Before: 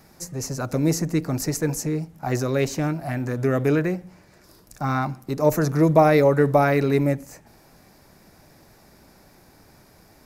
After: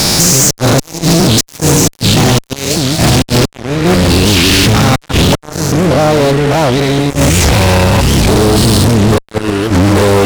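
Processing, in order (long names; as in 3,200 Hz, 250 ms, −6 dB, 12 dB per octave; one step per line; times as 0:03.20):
spectrum averaged block by block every 200 ms
high shelf with overshoot 2,500 Hz +9.5 dB, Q 1.5
delay with pitch and tempo change per echo 753 ms, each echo −6 semitones, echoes 3, each echo −6 dB
gate with flip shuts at −14 dBFS, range −30 dB
low-pass filter 10,000 Hz 24 dB per octave
downward compressor 20 to 1, threshold −40 dBFS, peak gain reduction 20 dB
fuzz pedal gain 53 dB, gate −59 dBFS
wow of a warped record 78 rpm, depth 250 cents
level +7 dB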